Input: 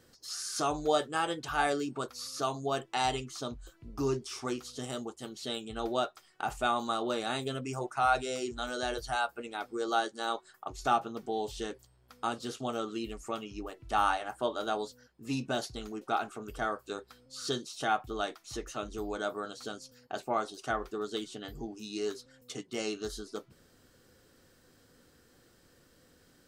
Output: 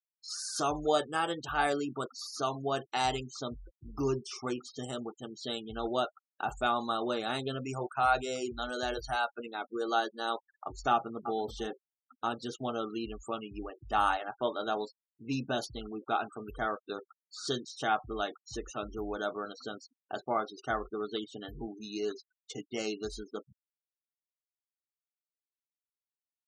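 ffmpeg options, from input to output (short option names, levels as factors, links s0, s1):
-filter_complex "[0:a]asplit=2[s0][s1];[s1]afade=t=in:st=10.92:d=0.01,afade=t=out:st=11.39:d=0.01,aecho=0:1:330|660:0.251189|0.0251189[s2];[s0][s2]amix=inputs=2:normalize=0,agate=range=0.0224:threshold=0.00158:ratio=3:detection=peak,afftfilt=real='re*gte(hypot(re,im),0.00794)':imag='im*gte(hypot(re,im),0.00794)':win_size=1024:overlap=0.75"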